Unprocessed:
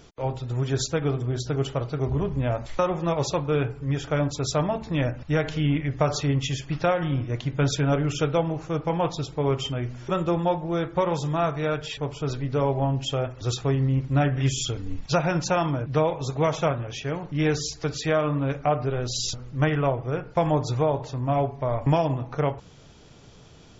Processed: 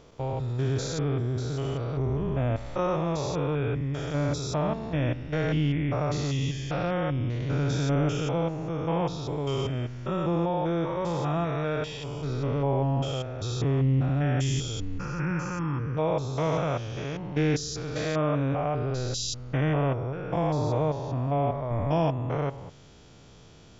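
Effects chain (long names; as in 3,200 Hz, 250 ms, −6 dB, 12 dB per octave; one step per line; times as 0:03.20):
spectrum averaged block by block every 200 ms
0:14.98–0:15.97: phaser with its sweep stopped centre 1,600 Hz, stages 4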